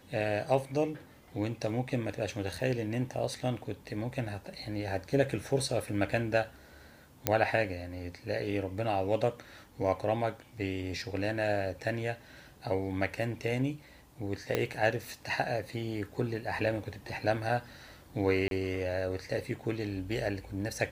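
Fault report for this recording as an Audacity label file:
7.270000	7.270000	click −8 dBFS
14.550000	14.550000	click −14 dBFS
18.480000	18.510000	drop-out 32 ms

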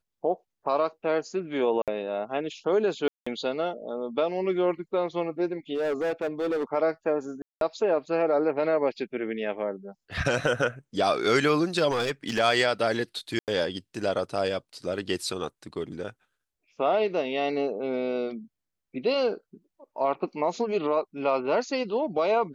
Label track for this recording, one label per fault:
1.820000	1.880000	drop-out 57 ms
3.080000	3.270000	drop-out 185 ms
5.740000	6.640000	clipping −24 dBFS
7.420000	7.610000	drop-out 192 ms
11.900000	12.400000	clipping −22 dBFS
13.390000	13.480000	drop-out 88 ms

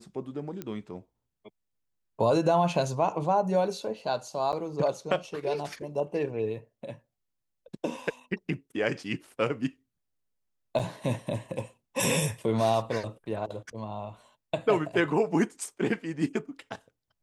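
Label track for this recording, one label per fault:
0.620000	0.620000	click −21 dBFS
4.520000	4.530000	drop-out 8.8 ms
10.790000	10.800000	drop-out 5.7 ms

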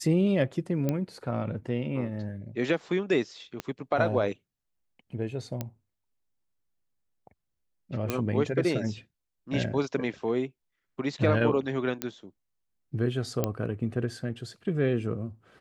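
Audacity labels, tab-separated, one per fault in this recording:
0.890000	0.890000	click −15 dBFS
3.600000	3.600000	click −18 dBFS
5.610000	5.610000	click −17 dBFS
8.100000	8.100000	click −13 dBFS
12.020000	12.020000	click −13 dBFS
13.440000	13.440000	click −12 dBFS

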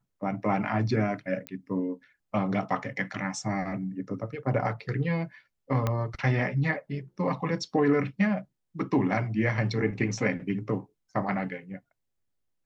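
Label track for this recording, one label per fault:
1.470000	1.470000	click −19 dBFS
5.870000	5.870000	click −14 dBFS

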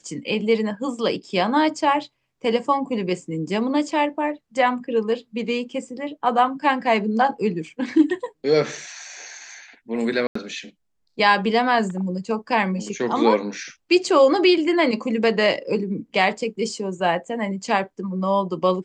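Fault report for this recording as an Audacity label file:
10.270000	10.350000	drop-out 84 ms

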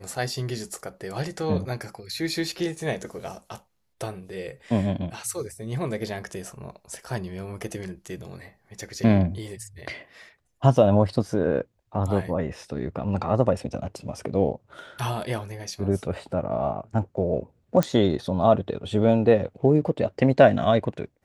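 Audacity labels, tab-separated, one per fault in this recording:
17.830000	17.830000	click −8 dBFS

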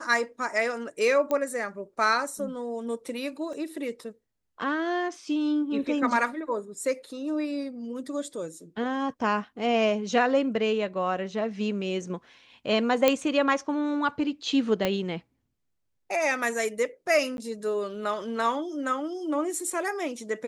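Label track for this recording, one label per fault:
1.310000	1.310000	click −16 dBFS
3.530000	3.530000	drop-out 2.4 ms
13.080000	13.080000	click −6 dBFS
14.850000	14.850000	click −11 dBFS
17.370000	17.380000	drop-out 11 ms

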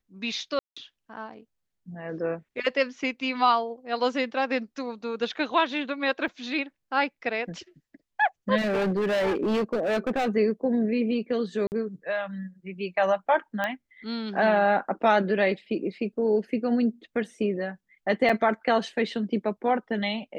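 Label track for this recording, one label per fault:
0.590000	0.770000	drop-out 175 ms
6.280000	6.280000	drop-out 2.7 ms
8.570000	10.290000	clipping −22 dBFS
11.670000	11.720000	drop-out 49 ms
13.640000	13.640000	click −15 dBFS
18.290000	18.290000	drop-out 4.9 ms

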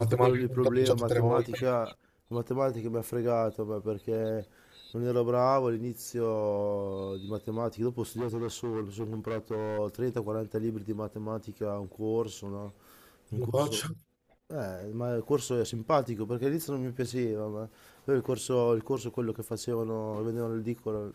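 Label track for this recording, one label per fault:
8.170000	9.790000	clipping −29 dBFS

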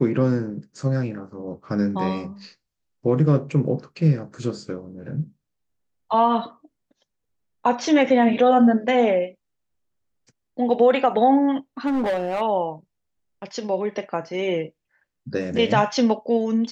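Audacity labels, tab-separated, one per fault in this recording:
11.860000	12.420000	clipping −19.5 dBFS

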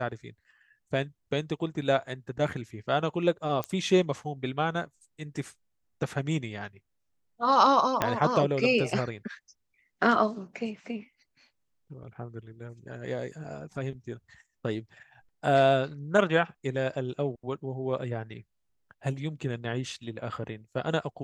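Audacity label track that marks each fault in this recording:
3.640000	3.640000	click −16 dBFS
8.020000	8.020000	click −9 dBFS

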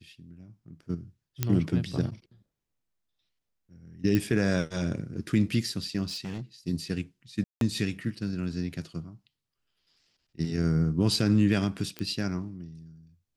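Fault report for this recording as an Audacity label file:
1.430000	1.430000	click −11 dBFS
4.150000	4.150000	click −14 dBFS
6.070000	6.420000	clipping −31 dBFS
7.440000	7.610000	drop-out 172 ms
11.990000	11.990000	click −19 dBFS

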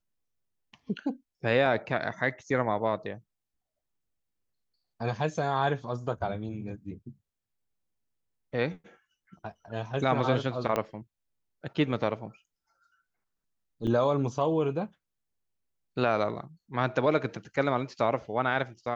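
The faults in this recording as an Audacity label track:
1.660000	1.660000	drop-out 3.1 ms
10.760000	10.760000	click −14 dBFS
13.870000	13.870000	drop-out 4.7 ms

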